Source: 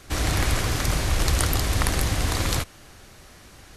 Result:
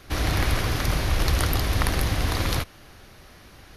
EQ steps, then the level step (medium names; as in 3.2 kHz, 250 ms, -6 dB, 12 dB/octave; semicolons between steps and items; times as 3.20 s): peaking EQ 7.8 kHz -12.5 dB 0.48 oct; 0.0 dB